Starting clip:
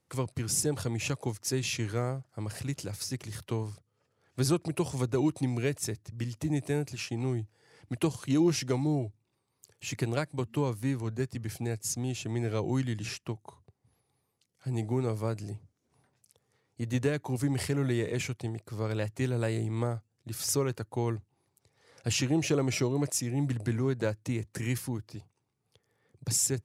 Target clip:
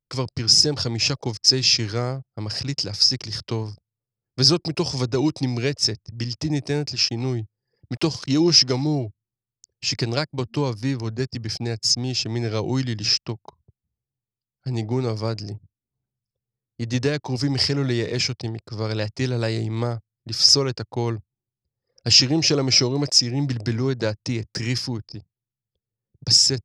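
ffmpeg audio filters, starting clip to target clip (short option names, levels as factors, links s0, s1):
-filter_complex "[0:a]asettb=1/sr,asplit=3[s0][s1][s2];[s0]atrim=end=7.944[s3];[s1]atrim=start=7.94:end=8.86,asetpts=PTS-STARTPTS,afade=t=in:d=0.004:c=qsin,afade=t=out:st=0.916:d=0.004:c=qsin,aeval=exprs='val(0)*gte(abs(val(0)),0.00376)':c=same[s4];[s2]atrim=start=8.856[s5];[s3][s4]acrossfade=d=0.004:c1=hsin:c2=qsin[s6];[s6][s5]acrossfade=d=0.004:c1=qsin:c2=hsin,anlmdn=0.01,lowpass=f=5100:t=q:w=11,volume=2"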